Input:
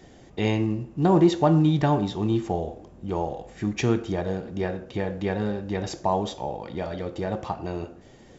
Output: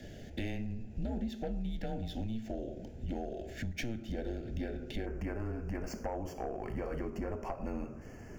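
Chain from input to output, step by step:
running median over 5 samples
downward compressor 10 to 1, threshold −34 dBFS, peak gain reduction 21 dB
frequency shifter −120 Hz
soft clipping −30.5 dBFS, distortion −16 dB
Butterworth band-reject 1,100 Hz, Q 1.5, from 0:05.05 3,700 Hz
level +2.5 dB

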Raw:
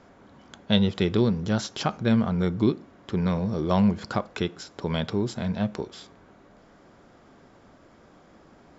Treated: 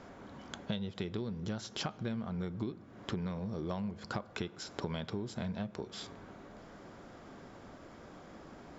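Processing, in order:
downward compressor 12 to 1, threshold −36 dBFS, peak gain reduction 21 dB
convolution reverb RT60 5.8 s, pre-delay 93 ms, DRR 20 dB
level +2 dB

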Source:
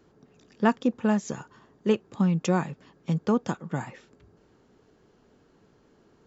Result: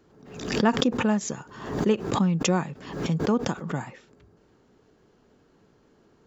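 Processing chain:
background raised ahead of every attack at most 73 dB per second

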